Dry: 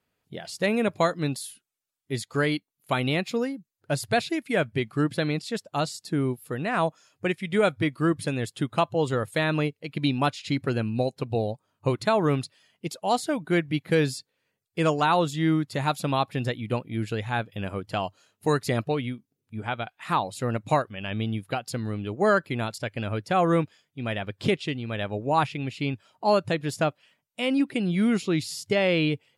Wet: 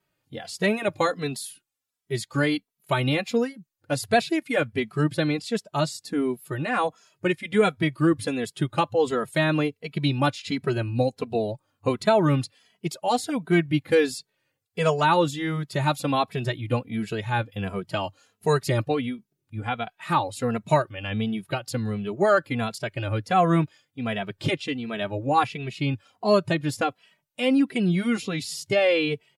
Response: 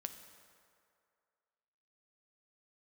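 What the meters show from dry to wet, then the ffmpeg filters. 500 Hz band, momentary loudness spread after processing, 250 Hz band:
+2.0 dB, 9 LU, +1.0 dB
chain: -filter_complex "[0:a]asplit=2[a][b];[b]adelay=2.7,afreqshift=-1.4[c];[a][c]amix=inputs=2:normalize=1,volume=4.5dB"

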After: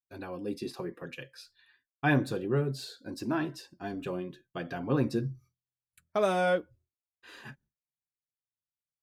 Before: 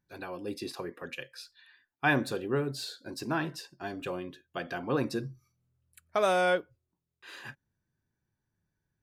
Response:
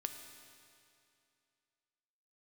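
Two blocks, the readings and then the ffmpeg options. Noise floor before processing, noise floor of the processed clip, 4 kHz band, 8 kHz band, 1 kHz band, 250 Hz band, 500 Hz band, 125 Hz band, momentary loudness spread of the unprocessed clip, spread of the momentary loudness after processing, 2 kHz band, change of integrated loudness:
-85 dBFS, under -85 dBFS, -4.0 dB, -4.0 dB, -2.0 dB, +2.5 dB, 0.0 dB, +5.0 dB, 18 LU, 20 LU, -3.0 dB, 0.0 dB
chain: -af "agate=range=-33dB:threshold=-56dB:ratio=3:detection=peak,lowshelf=f=390:g=9.5,flanger=delay=2.8:depth=5.4:regen=-45:speed=0.29:shape=triangular"

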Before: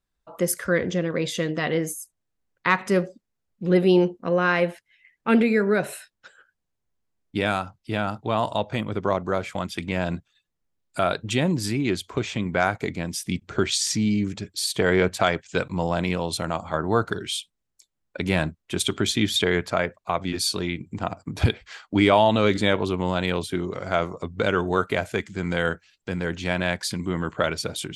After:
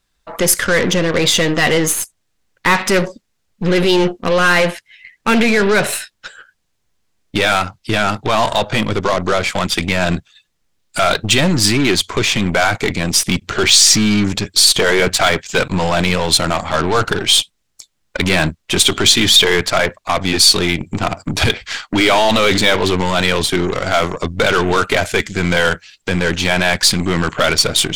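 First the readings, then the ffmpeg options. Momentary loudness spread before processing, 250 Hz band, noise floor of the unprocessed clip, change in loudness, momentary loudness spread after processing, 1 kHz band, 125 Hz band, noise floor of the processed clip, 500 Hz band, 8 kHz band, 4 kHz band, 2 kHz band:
10 LU, +6.5 dB, -79 dBFS, +10.0 dB, 10 LU, +8.5 dB, +7.0 dB, -68 dBFS, +7.0 dB, +16.0 dB, +16.0 dB, +11.5 dB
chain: -af "apsyclip=21dB,aeval=exprs='1.12*(cos(1*acos(clip(val(0)/1.12,-1,1)))-cos(1*PI/2))+0.0562*(cos(4*acos(clip(val(0)/1.12,-1,1)))-cos(4*PI/2))+0.0794*(cos(8*acos(clip(val(0)/1.12,-1,1)))-cos(8*PI/2))':c=same,equalizer=f=4.4k:w=0.35:g=7.5,volume=-10dB"

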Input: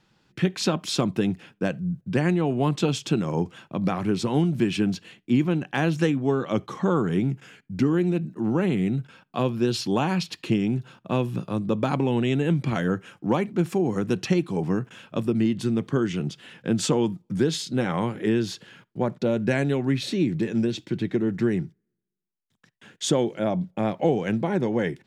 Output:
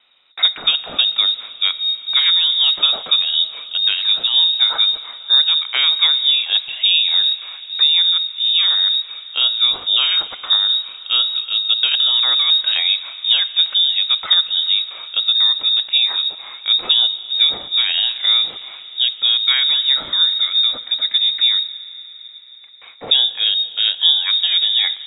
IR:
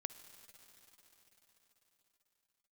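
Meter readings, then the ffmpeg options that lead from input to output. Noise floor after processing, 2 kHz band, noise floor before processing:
-38 dBFS, +7.5 dB, -73 dBFS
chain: -filter_complex "[0:a]lowpass=f=3.3k:t=q:w=0.5098,lowpass=f=3.3k:t=q:w=0.6013,lowpass=f=3.3k:t=q:w=0.9,lowpass=f=3.3k:t=q:w=2.563,afreqshift=-3900,lowshelf=f=320:g=-3,asplit=2[a][b];[1:a]atrim=start_sample=2205[c];[b][c]afir=irnorm=-1:irlink=0,volume=5.5dB[d];[a][d]amix=inputs=2:normalize=0"

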